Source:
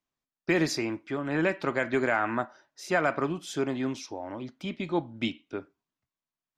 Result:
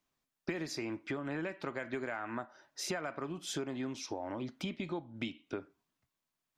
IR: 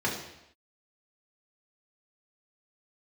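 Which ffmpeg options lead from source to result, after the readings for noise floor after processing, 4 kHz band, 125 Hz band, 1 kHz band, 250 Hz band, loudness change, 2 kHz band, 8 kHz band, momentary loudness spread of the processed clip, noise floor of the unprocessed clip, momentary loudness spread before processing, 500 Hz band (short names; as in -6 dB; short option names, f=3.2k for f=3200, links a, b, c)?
under -85 dBFS, -5.0 dB, -8.5 dB, -11.5 dB, -9.0 dB, -10.0 dB, -11.5 dB, -3.0 dB, 5 LU, under -85 dBFS, 13 LU, -10.5 dB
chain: -af "acompressor=threshold=-40dB:ratio=10,volume=5dB"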